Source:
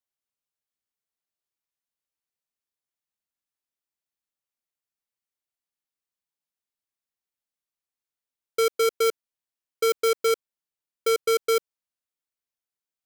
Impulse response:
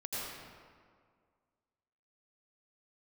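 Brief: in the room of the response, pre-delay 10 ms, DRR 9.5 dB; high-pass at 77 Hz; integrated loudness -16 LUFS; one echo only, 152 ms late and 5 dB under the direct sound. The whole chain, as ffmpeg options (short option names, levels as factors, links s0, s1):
-filter_complex "[0:a]highpass=77,aecho=1:1:152:0.562,asplit=2[s0][s1];[1:a]atrim=start_sample=2205,adelay=10[s2];[s1][s2]afir=irnorm=-1:irlink=0,volume=0.237[s3];[s0][s3]amix=inputs=2:normalize=0,volume=2.51"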